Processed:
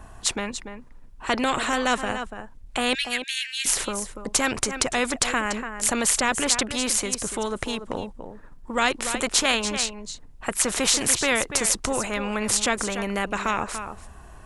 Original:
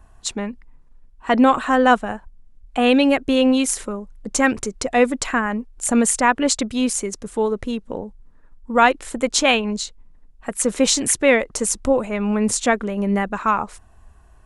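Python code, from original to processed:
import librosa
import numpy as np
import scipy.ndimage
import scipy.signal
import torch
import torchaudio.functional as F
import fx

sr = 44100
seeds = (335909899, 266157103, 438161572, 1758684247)

y = fx.steep_highpass(x, sr, hz=1600.0, slope=96, at=(2.93, 3.65), fade=0.02)
y = y + 10.0 ** (-17.5 / 20.0) * np.pad(y, (int(289 * sr / 1000.0), 0))[:len(y)]
y = fx.spectral_comp(y, sr, ratio=2.0)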